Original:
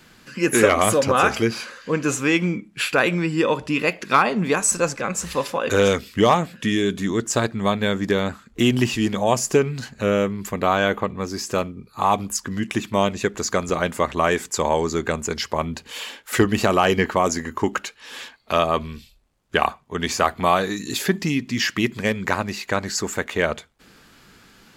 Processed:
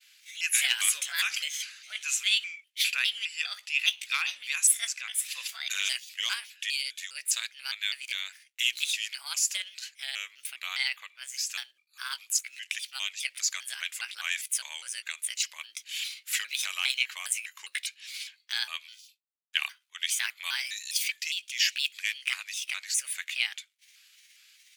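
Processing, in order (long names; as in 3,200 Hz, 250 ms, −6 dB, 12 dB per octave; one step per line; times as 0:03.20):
pitch shifter gated in a rhythm +5 semitones, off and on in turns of 203 ms
Chebyshev high-pass filter 2,400 Hz, order 3
downward expander −54 dBFS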